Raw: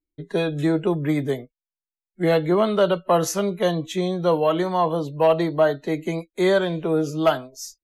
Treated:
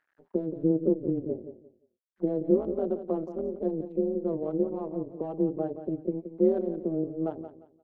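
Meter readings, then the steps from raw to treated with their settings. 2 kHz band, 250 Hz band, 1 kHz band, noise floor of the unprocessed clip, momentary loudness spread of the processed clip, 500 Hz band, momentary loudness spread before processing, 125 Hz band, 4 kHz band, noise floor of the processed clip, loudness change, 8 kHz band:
under -30 dB, -4.5 dB, -19.0 dB, under -85 dBFS, 9 LU, -8.5 dB, 8 LU, -10.5 dB, under -40 dB, -78 dBFS, -8.0 dB, under -40 dB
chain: local Wiener filter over 25 samples; gate -40 dBFS, range -20 dB; dynamic bell 2.3 kHz, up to -3 dB, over -34 dBFS, Q 0.88; upward compressor, threshold -30 dBFS; bit crusher 10-bit; auto-wah 350–1700 Hz, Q 6, down, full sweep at -24 dBFS; AM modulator 160 Hz, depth 75%; feedback delay 175 ms, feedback 24%, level -11 dB; trim +4 dB

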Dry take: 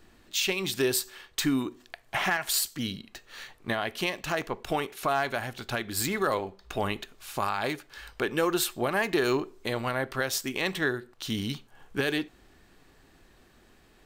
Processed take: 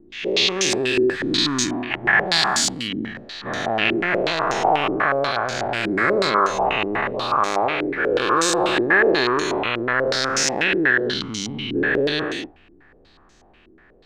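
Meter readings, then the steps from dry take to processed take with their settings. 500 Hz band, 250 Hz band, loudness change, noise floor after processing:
+9.5 dB, +7.5 dB, +9.5 dB, -53 dBFS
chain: every event in the spectrogram widened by 480 ms; hum notches 50/100 Hz; step-sequenced low-pass 8.2 Hz 340–6300 Hz; trim -3 dB

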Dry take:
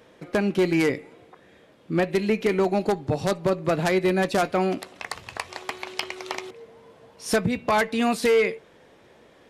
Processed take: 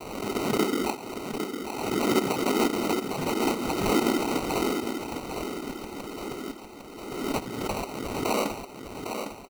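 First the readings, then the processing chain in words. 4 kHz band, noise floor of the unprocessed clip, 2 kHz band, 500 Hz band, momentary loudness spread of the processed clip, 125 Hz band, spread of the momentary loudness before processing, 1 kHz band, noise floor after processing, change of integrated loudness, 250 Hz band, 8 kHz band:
0.0 dB, -55 dBFS, -6.0 dB, -5.5 dB, 13 LU, -7.0 dB, 13 LU, -2.0 dB, -43 dBFS, -4.0 dB, -1.5 dB, +2.0 dB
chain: low-pass 1.4 kHz; hum notches 60/120/180/240/300/360 Hz; comb 5.2 ms, depth 63%; in parallel at +0.5 dB: compression, threshold -31 dBFS, peak gain reduction 16 dB; on the sum: static phaser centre 680 Hz, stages 6; noise-vocoded speech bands 6; sample-and-hold 26×; feedback delay 805 ms, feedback 44%, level -7 dB; swell ahead of each attack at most 40 dB/s; trim -7 dB

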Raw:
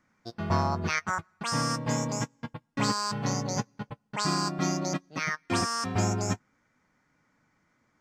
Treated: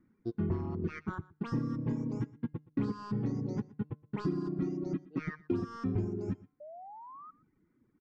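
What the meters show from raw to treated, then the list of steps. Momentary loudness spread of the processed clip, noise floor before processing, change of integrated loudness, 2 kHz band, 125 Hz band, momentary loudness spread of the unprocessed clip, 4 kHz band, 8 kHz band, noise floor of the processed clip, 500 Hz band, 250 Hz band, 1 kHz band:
14 LU, -72 dBFS, -6.5 dB, -16.0 dB, -4.0 dB, 9 LU, under -25 dB, under -30 dB, -74 dBFS, -4.5 dB, -1.5 dB, -15.5 dB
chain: saturation -22.5 dBFS, distortion -15 dB; resonant low shelf 480 Hz +8.5 dB, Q 3; de-hum 149.8 Hz, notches 30; compression 10:1, threshold -22 dBFS, peak gain reduction 7.5 dB; reverb removal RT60 1.3 s; painted sound rise, 6.60–7.31 s, 580–1300 Hz -41 dBFS; tape spacing loss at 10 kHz 34 dB; delay 120 ms -21 dB; trim -4 dB

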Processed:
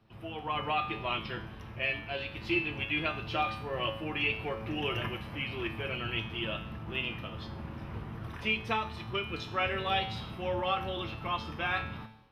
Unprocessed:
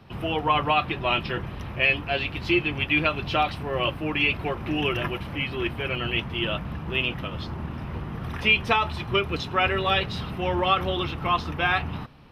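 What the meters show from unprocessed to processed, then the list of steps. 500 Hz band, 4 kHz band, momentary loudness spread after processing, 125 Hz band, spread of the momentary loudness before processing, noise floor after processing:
-8.5 dB, -8.0 dB, 11 LU, -8.5 dB, 11 LU, -45 dBFS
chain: level rider gain up to 9 dB; feedback comb 110 Hz, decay 0.64 s, harmonics all, mix 80%; trim -5 dB

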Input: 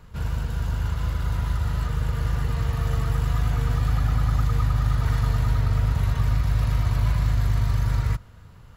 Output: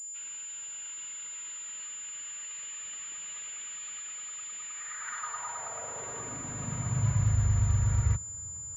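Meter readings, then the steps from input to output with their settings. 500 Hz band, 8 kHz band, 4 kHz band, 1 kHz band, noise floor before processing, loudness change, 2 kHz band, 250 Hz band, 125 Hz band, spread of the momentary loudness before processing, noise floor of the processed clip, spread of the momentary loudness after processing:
-10.0 dB, +14.0 dB, -7.5 dB, -8.5 dB, -46 dBFS, -8.5 dB, -7.0 dB, -10.0 dB, -9.5 dB, 4 LU, -41 dBFS, 11 LU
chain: high-pass sweep 2.8 kHz -> 77 Hz, 4.62–7.42 s; class-D stage that switches slowly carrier 7.1 kHz; trim -7 dB

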